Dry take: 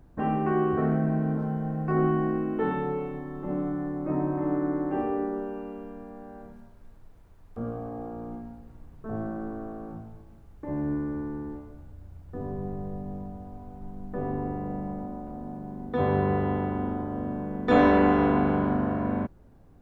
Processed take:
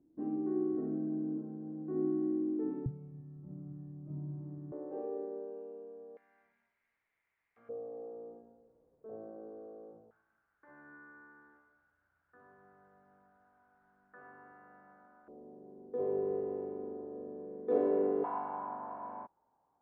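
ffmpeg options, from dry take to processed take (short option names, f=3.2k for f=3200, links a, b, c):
-af "asetnsamples=n=441:p=0,asendcmd='2.86 bandpass f 130;4.72 bandpass f 490;6.17 bandpass f 2100;7.69 bandpass f 490;10.11 bandpass f 1500;15.28 bandpass f 430;18.24 bandpass f 910',bandpass=f=310:t=q:w=7.2:csg=0"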